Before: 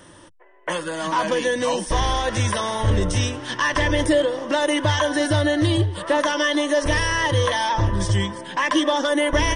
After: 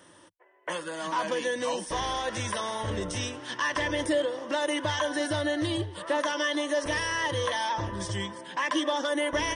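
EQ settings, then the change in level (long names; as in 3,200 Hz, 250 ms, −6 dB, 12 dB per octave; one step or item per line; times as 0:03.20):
high-pass filter 220 Hz 6 dB per octave
−7.0 dB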